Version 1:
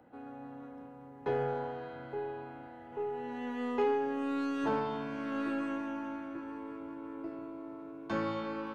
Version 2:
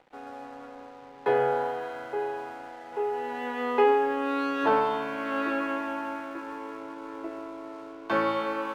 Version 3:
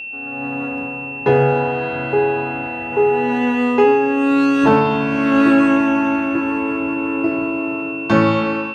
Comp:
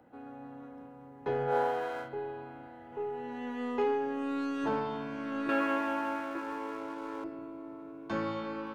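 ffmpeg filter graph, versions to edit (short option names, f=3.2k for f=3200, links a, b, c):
-filter_complex "[1:a]asplit=2[a][b];[0:a]asplit=3[c][d][e];[c]atrim=end=1.56[f];[a]atrim=start=1.46:end=2.1[g];[d]atrim=start=2:end=5.492[h];[b]atrim=start=5.488:end=7.242[i];[e]atrim=start=7.238[j];[f][g]acrossfade=d=0.1:c1=tri:c2=tri[k];[k][h]acrossfade=d=0.1:c1=tri:c2=tri[l];[l][i]acrossfade=d=0.004:c1=hsin:c2=hsin[m];[m][j]acrossfade=d=0.004:c1=hsin:c2=hsin"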